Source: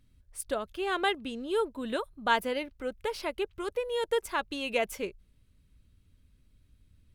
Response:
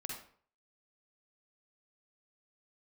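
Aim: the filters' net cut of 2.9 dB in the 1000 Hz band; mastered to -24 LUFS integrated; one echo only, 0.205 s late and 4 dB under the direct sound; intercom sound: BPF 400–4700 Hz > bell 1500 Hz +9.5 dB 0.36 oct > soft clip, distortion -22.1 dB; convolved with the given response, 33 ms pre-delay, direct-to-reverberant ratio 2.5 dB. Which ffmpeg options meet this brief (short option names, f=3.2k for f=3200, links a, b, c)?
-filter_complex "[0:a]equalizer=f=1k:t=o:g=-6,aecho=1:1:205:0.631,asplit=2[a][b];[1:a]atrim=start_sample=2205,adelay=33[c];[b][c]afir=irnorm=-1:irlink=0,volume=-1.5dB[d];[a][d]amix=inputs=2:normalize=0,highpass=400,lowpass=4.7k,equalizer=f=1.5k:t=o:w=0.36:g=9.5,asoftclip=threshold=-15dB,volume=6.5dB"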